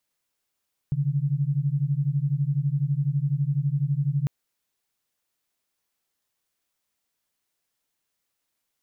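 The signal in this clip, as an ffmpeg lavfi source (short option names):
-f lavfi -i "aevalsrc='0.0596*(sin(2*PI*136*t)+sin(2*PI*148*t))':d=3.35:s=44100"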